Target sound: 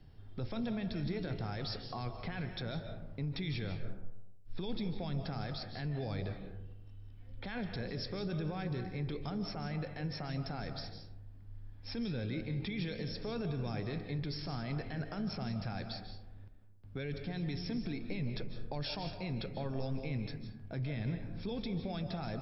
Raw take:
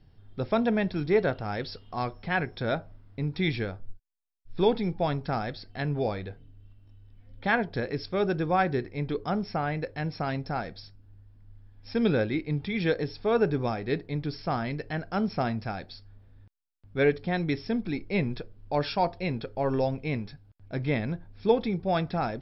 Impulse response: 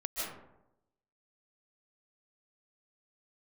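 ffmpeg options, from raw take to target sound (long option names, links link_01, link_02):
-filter_complex "[0:a]acrossover=split=190|3000[link_01][link_02][link_03];[link_02]acompressor=threshold=-36dB:ratio=6[link_04];[link_01][link_04][link_03]amix=inputs=3:normalize=0,alimiter=level_in=7.5dB:limit=-24dB:level=0:latency=1:release=13,volume=-7.5dB,asplit=2[link_05][link_06];[1:a]atrim=start_sample=2205,asetrate=42336,aresample=44100[link_07];[link_06][link_07]afir=irnorm=-1:irlink=0,volume=-7dB[link_08];[link_05][link_08]amix=inputs=2:normalize=0,volume=-2dB"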